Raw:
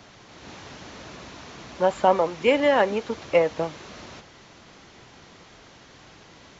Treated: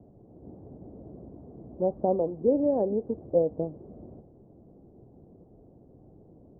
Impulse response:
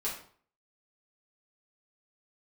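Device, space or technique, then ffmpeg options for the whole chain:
under water: -af "lowpass=f=460:w=0.5412,lowpass=f=460:w=1.3066,equalizer=f=730:t=o:w=0.49:g=7"

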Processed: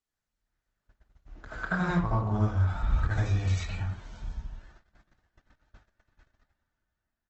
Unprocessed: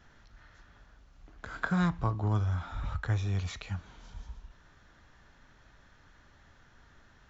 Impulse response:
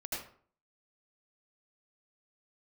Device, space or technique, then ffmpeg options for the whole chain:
speakerphone in a meeting room: -filter_complex "[0:a]asettb=1/sr,asplit=3[s0][s1][s2];[s0]atrim=end=1.964[s3];[s1]atrim=start=1.96:end=3.84,asetpts=PTS-STARTPTS,afade=t=in:d=0.004:c=qsin,afade=t=out:st=1.876:d=0.004:c=qsin,asubboost=boost=3.5:cutoff=84[s4];[s2]atrim=start=3.836[s5];[s3][s4]acrossfade=d=0.004:c1=hsin:c2=qsin[s6];[s6][s5]acrossfade=d=0.004:c1=qsin:c2=hsin[s7];[1:a]atrim=start_sample=2205[s8];[s7][s8]afir=irnorm=-1:irlink=0,asplit=2[s9][s10];[s10]adelay=110,highpass=300,lowpass=3400,asoftclip=type=hard:threshold=0.0631,volume=0.126[s11];[s9][s11]amix=inputs=2:normalize=0,dynaudnorm=f=210:g=9:m=3.55,agate=range=0.0631:threshold=0.00891:ratio=16:detection=peak,volume=0.355" -ar 48000 -c:a libopus -b:a 16k

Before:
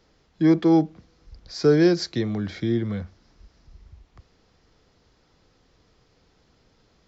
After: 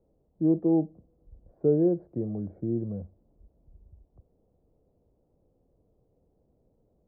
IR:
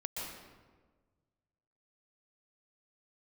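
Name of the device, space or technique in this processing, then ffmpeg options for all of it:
under water: -af "lowpass=f=670:w=0.5412,lowpass=f=670:w=1.3066,equalizer=f=580:t=o:w=0.45:g=4,volume=0.501"

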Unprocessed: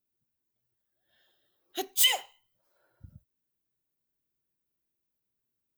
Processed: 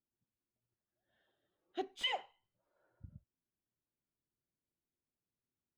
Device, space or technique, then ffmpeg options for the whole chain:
phone in a pocket: -af "lowpass=3300,equalizer=f=200:t=o:w=0.77:g=2,highshelf=f=2100:g=-10.5,volume=0.668"

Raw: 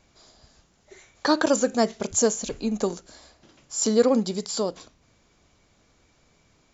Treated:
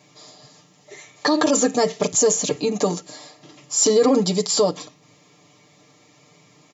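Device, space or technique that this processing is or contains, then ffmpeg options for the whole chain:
PA system with an anti-feedback notch: -af "highpass=f=120:w=0.5412,highpass=f=120:w=1.3066,asuperstop=centerf=1500:order=4:qfactor=6,aecho=1:1:6.7:0.87,alimiter=limit=0.168:level=0:latency=1:release=39,volume=2.24"

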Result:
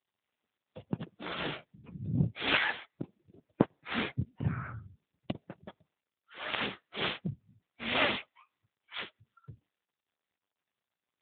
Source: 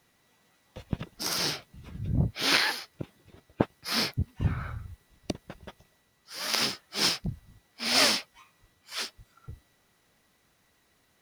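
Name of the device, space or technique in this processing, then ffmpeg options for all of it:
mobile call with aggressive noise cancelling: -af "highpass=110,afftdn=nr=32:nf=-50" -ar 8000 -c:a libopencore_amrnb -b:a 7950

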